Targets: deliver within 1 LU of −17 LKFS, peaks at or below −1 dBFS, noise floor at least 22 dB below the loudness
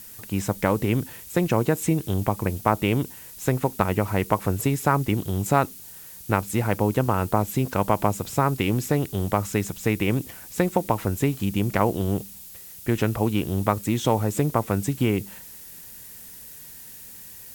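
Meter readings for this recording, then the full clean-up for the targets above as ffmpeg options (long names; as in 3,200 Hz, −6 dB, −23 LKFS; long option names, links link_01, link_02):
background noise floor −43 dBFS; target noise floor −47 dBFS; integrated loudness −24.5 LKFS; sample peak −4.5 dBFS; target loudness −17.0 LKFS
→ -af "afftdn=noise_reduction=6:noise_floor=-43"
-af "volume=7.5dB,alimiter=limit=-1dB:level=0:latency=1"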